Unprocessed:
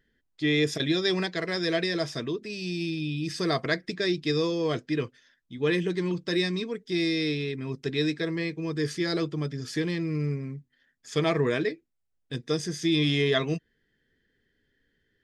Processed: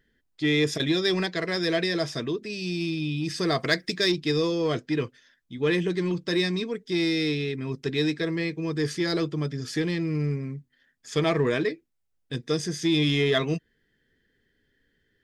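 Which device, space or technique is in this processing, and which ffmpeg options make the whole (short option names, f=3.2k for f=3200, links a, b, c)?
parallel distortion: -filter_complex "[0:a]asplit=2[a][b];[b]asoftclip=type=hard:threshold=-26dB,volume=-11dB[c];[a][c]amix=inputs=2:normalize=0,asettb=1/sr,asplit=3[d][e][f];[d]atrim=end=3.604[g];[e]atrim=start=3.6:end=4.12,asetpts=PTS-STARTPTS,afade=t=in:d=0.004:c=qsin,afade=t=out:st=0.516:d=0.004:c=qsin,highshelf=f=3.4k:g=10[h];[f]atrim=start=4.116[i];[g][h]acrossfade=d=0.004:c1=hsin:c2=qsin[j];[j][i]acrossfade=d=0.004:c1=qsin:c2=hsin"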